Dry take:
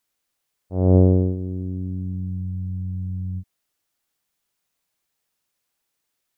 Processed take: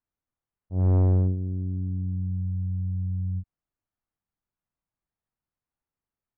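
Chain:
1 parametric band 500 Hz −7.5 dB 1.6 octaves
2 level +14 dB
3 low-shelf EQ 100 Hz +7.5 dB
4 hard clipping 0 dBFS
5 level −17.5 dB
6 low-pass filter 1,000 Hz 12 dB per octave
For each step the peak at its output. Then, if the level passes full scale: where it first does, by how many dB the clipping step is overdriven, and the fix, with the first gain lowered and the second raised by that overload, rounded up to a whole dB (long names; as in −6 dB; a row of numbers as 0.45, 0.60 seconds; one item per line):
−9.0, +5.0, +10.0, 0.0, −17.5, −17.0 dBFS
step 2, 10.0 dB
step 2 +4 dB, step 5 −7.5 dB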